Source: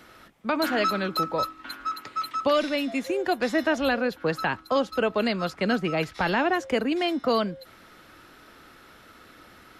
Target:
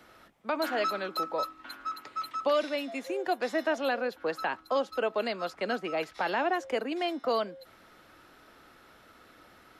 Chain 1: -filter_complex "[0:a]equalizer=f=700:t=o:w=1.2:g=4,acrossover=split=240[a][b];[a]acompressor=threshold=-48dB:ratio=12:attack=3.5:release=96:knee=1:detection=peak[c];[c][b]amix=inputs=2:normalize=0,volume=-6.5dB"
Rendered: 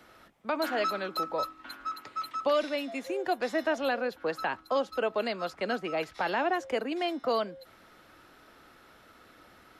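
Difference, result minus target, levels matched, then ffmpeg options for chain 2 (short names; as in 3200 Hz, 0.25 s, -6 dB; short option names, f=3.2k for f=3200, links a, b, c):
compressor: peak gain reduction -8.5 dB
-filter_complex "[0:a]equalizer=f=700:t=o:w=1.2:g=4,acrossover=split=240[a][b];[a]acompressor=threshold=-57dB:ratio=12:attack=3.5:release=96:knee=1:detection=peak[c];[c][b]amix=inputs=2:normalize=0,volume=-6.5dB"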